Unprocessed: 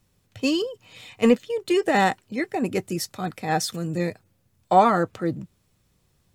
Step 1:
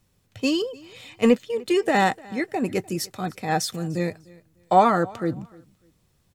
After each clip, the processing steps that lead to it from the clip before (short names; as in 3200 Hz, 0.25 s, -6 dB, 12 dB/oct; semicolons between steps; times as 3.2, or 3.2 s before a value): feedback echo 0.299 s, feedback 24%, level -23.5 dB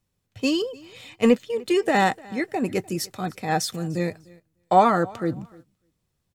gate -46 dBFS, range -10 dB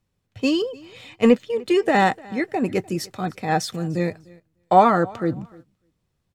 high shelf 5900 Hz -9 dB; gain +2.5 dB